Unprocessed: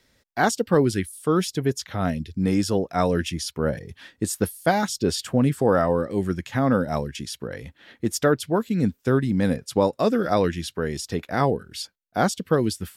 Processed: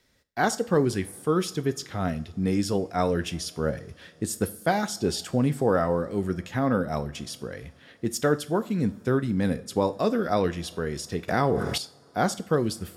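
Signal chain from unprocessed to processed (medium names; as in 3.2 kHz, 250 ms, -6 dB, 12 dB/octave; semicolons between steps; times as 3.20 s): two-slope reverb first 0.44 s, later 4.5 s, from -22 dB, DRR 11.5 dB; 11.28–11.78 s: level flattener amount 70%; trim -3.5 dB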